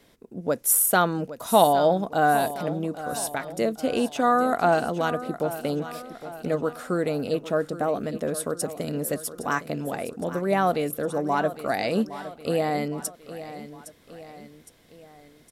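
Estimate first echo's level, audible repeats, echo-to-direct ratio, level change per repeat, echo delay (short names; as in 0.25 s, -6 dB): -13.5 dB, 3, -12.5 dB, -6.0 dB, 0.812 s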